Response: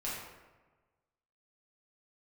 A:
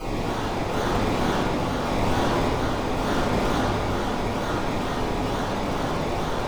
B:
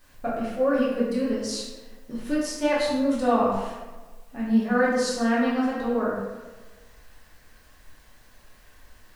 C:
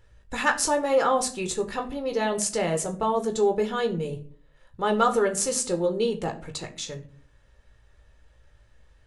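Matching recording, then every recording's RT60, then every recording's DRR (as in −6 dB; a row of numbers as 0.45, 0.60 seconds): B; 2.0, 1.3, 0.50 seconds; −13.5, −8.0, 4.5 decibels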